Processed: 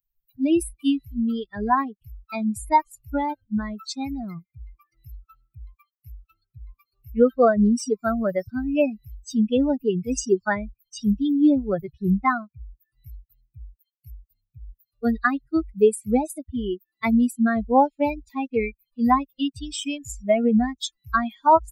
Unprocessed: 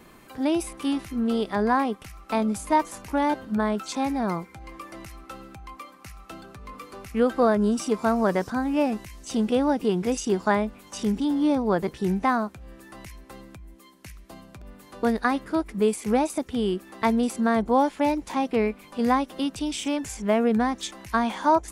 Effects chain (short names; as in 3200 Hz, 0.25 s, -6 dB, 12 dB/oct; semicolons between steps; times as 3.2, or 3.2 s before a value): per-bin expansion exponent 3; gain +8.5 dB